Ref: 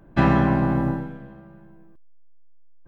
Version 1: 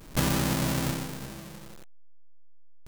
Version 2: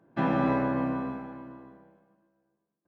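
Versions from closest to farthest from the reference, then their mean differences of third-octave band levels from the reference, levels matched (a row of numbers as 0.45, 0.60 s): 2, 1; 4.5, 14.5 dB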